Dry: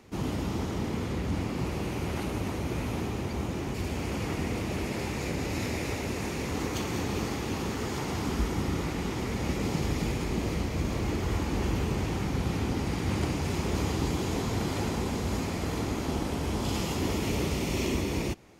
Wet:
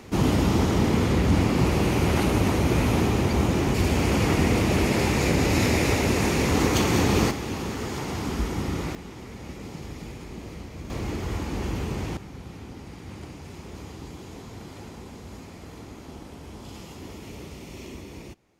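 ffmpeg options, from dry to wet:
ffmpeg -i in.wav -af "asetnsamples=nb_out_samples=441:pad=0,asendcmd='7.31 volume volume 1.5dB;8.95 volume volume -8.5dB;10.9 volume volume -0.5dB;12.17 volume volume -11dB',volume=10dB" out.wav

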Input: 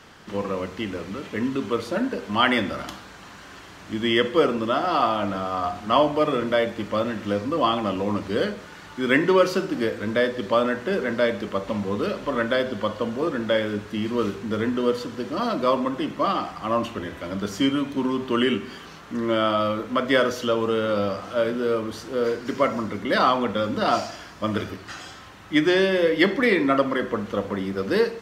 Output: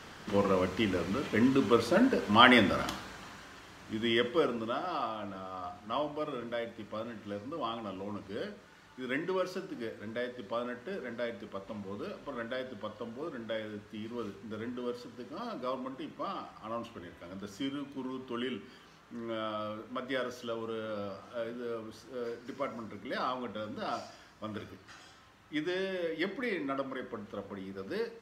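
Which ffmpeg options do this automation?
ffmpeg -i in.wav -af "volume=-0.5dB,afade=type=out:start_time=2.86:duration=0.67:silence=0.421697,afade=type=out:start_time=4.11:duration=1.02:silence=0.446684" out.wav

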